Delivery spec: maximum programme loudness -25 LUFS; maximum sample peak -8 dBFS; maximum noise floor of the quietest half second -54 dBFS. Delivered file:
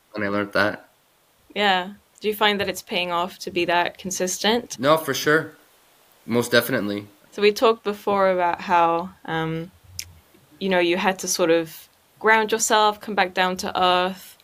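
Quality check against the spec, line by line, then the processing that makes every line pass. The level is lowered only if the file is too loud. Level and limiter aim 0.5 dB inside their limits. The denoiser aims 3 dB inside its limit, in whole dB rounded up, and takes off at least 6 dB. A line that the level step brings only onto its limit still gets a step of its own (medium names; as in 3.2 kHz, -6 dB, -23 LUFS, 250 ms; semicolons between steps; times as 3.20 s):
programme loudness -21.5 LUFS: fail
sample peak -3.5 dBFS: fail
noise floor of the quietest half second -61 dBFS: pass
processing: trim -4 dB; peak limiter -8.5 dBFS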